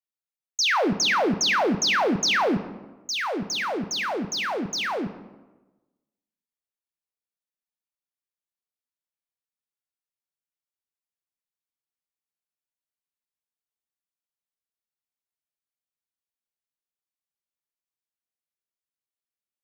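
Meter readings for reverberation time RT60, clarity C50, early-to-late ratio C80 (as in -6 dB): 1.2 s, 12.5 dB, 14.5 dB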